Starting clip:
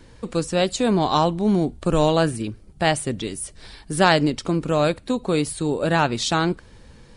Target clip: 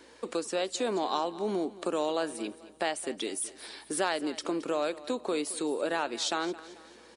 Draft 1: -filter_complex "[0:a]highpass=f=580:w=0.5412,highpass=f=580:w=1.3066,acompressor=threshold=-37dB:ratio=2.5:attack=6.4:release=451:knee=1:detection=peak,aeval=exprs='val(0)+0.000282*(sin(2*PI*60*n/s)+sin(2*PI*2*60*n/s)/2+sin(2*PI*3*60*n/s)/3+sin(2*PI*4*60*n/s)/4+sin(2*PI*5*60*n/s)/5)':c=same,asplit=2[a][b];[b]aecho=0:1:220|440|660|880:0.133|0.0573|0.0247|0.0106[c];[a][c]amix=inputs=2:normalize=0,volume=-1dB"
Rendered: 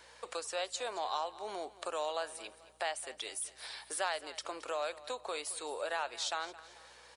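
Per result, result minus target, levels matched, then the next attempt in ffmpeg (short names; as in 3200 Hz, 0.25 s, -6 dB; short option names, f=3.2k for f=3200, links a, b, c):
250 Hz band -14.5 dB; compressor: peak gain reduction +4.5 dB
-filter_complex "[0:a]highpass=f=290:w=0.5412,highpass=f=290:w=1.3066,acompressor=threshold=-37dB:ratio=2.5:attack=6.4:release=451:knee=1:detection=peak,aeval=exprs='val(0)+0.000282*(sin(2*PI*60*n/s)+sin(2*PI*2*60*n/s)/2+sin(2*PI*3*60*n/s)/3+sin(2*PI*4*60*n/s)/4+sin(2*PI*5*60*n/s)/5)':c=same,asplit=2[a][b];[b]aecho=0:1:220|440|660|880:0.133|0.0573|0.0247|0.0106[c];[a][c]amix=inputs=2:normalize=0,volume=-1dB"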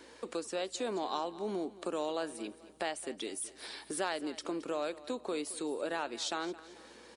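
compressor: peak gain reduction +5.5 dB
-filter_complex "[0:a]highpass=f=290:w=0.5412,highpass=f=290:w=1.3066,acompressor=threshold=-28dB:ratio=2.5:attack=6.4:release=451:knee=1:detection=peak,aeval=exprs='val(0)+0.000282*(sin(2*PI*60*n/s)+sin(2*PI*2*60*n/s)/2+sin(2*PI*3*60*n/s)/3+sin(2*PI*4*60*n/s)/4+sin(2*PI*5*60*n/s)/5)':c=same,asplit=2[a][b];[b]aecho=0:1:220|440|660|880:0.133|0.0573|0.0247|0.0106[c];[a][c]amix=inputs=2:normalize=0,volume=-1dB"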